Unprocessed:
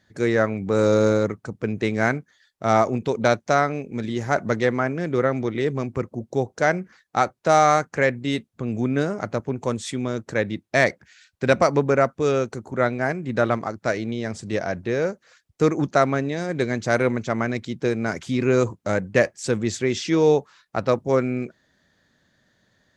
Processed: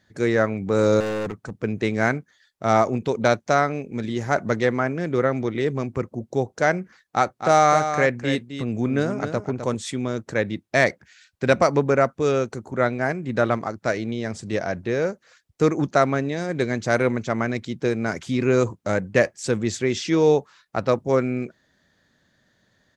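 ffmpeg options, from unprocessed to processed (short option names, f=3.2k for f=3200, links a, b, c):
-filter_complex "[0:a]asettb=1/sr,asplit=3[a][b][c];[a]atrim=end=1.004[d];[b]atrim=start=1:end=1.62,asetpts=PTS-STARTPTS,afade=t=in:d=0.004:c=qsin,afade=t=out:st=0.616:d=0.004:c=qsin,volume=24.5dB,asoftclip=hard,volume=-24.5dB[e];[c]atrim=start=1.616[f];[d][e]acrossfade=d=0.004:c1=hsin:c2=qsin[g];[g][f]acrossfade=d=0.004:c1=qsin:c2=hsin,asplit=3[h][i][j];[h]afade=t=out:st=7.22:d=0.02[k];[i]aecho=1:1:257:0.355,afade=t=in:st=7.22:d=0.02,afade=t=out:st=9.74:d=0.02[l];[j]afade=t=in:st=9.74:d=0.02[m];[k][l][m]amix=inputs=3:normalize=0"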